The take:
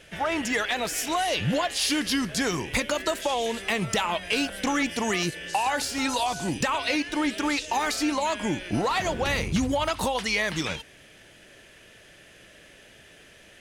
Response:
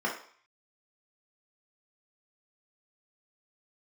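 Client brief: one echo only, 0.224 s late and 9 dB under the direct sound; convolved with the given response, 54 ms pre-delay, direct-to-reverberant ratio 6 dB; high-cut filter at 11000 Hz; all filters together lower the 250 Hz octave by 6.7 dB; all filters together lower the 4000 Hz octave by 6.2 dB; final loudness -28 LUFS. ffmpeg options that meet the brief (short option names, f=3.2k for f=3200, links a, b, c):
-filter_complex "[0:a]lowpass=11k,equalizer=f=250:t=o:g=-8.5,equalizer=f=4k:t=o:g=-8.5,aecho=1:1:224:0.355,asplit=2[a][b];[1:a]atrim=start_sample=2205,adelay=54[c];[b][c]afir=irnorm=-1:irlink=0,volume=-15dB[d];[a][d]amix=inputs=2:normalize=0,volume=-0.5dB"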